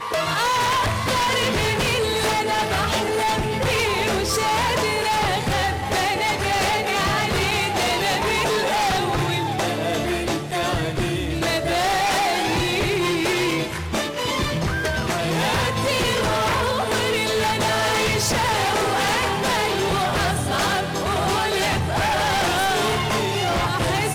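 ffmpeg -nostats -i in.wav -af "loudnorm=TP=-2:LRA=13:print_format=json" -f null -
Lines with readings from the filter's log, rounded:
"input_i" : "-20.9",
"input_tp" : "-12.8",
"input_lra" : "1.6",
"input_thresh" : "-30.9",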